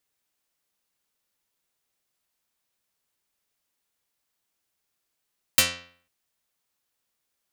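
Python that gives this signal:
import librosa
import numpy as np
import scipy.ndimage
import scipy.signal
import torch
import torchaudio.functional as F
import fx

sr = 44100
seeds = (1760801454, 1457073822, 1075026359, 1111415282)

y = fx.pluck(sr, length_s=0.5, note=41, decay_s=0.53, pick=0.21, brightness='dark')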